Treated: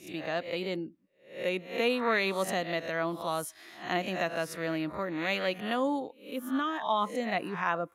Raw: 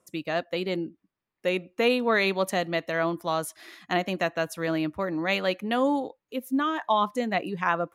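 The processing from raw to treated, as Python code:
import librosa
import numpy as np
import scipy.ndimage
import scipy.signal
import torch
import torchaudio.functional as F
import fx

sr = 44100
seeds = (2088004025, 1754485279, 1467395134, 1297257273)

y = fx.spec_swells(x, sr, rise_s=0.44)
y = F.gain(torch.from_numpy(y), -5.5).numpy()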